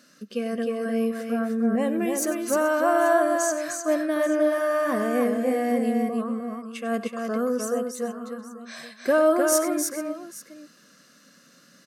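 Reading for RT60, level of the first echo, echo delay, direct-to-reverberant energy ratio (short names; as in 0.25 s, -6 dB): none, -14.5 dB, 96 ms, none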